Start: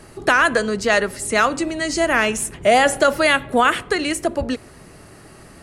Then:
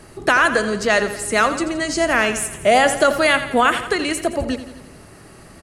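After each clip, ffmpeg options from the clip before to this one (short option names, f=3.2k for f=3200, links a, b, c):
-af "aecho=1:1:85|170|255|340|425|510:0.251|0.143|0.0816|0.0465|0.0265|0.0151"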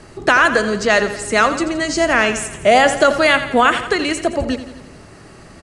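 -af "lowpass=f=8.3k:w=0.5412,lowpass=f=8.3k:w=1.3066,volume=2.5dB"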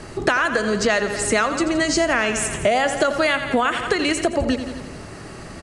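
-af "acompressor=threshold=-21dB:ratio=6,volume=4.5dB"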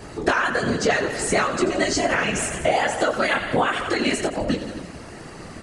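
-af "flanger=delay=18:depth=4.3:speed=1.3,afftfilt=real='hypot(re,im)*cos(2*PI*random(0))':imag='hypot(re,im)*sin(2*PI*random(1))':win_size=512:overlap=0.75,acontrast=83"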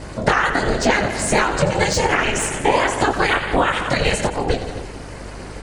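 -filter_complex "[0:a]aeval=exprs='val(0)*sin(2*PI*210*n/s)':c=same,acrossover=split=2100[a][b];[b]volume=22dB,asoftclip=hard,volume=-22dB[c];[a][c]amix=inputs=2:normalize=0,aeval=exprs='val(0)+0.00794*(sin(2*PI*50*n/s)+sin(2*PI*2*50*n/s)/2+sin(2*PI*3*50*n/s)/3+sin(2*PI*4*50*n/s)/4+sin(2*PI*5*50*n/s)/5)':c=same,volume=6.5dB"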